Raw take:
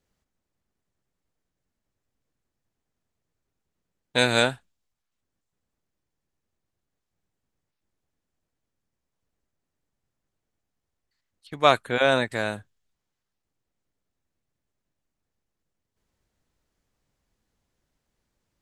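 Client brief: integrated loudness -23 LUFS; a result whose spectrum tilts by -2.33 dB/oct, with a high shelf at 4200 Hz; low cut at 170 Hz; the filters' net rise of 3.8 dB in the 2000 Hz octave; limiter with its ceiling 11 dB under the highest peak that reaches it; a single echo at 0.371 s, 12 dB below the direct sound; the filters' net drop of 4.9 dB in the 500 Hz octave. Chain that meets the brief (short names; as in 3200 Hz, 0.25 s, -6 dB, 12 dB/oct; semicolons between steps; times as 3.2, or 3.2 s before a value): HPF 170 Hz; bell 500 Hz -6.5 dB; bell 2000 Hz +4.5 dB; high shelf 4200 Hz +6 dB; limiter -12 dBFS; echo 0.371 s -12 dB; gain +4.5 dB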